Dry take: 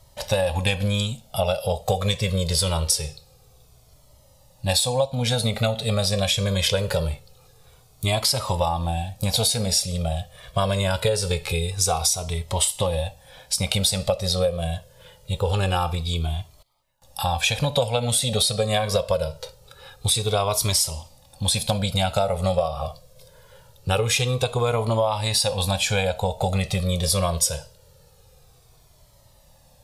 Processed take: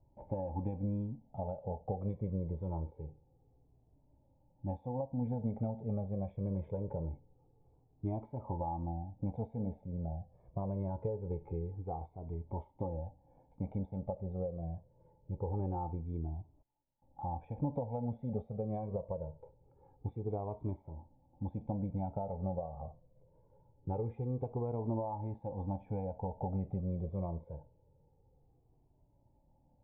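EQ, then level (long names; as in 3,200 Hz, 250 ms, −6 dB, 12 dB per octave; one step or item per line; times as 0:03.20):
formant resonators in series u
high-frequency loss of the air 370 metres
+1.0 dB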